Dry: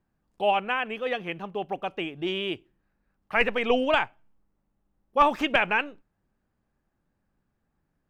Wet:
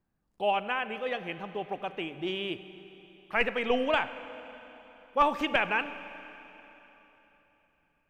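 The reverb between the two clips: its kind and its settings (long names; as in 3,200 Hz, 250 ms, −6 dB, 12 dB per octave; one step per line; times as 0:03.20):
four-comb reverb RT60 3.6 s, combs from 33 ms, DRR 12 dB
level −4 dB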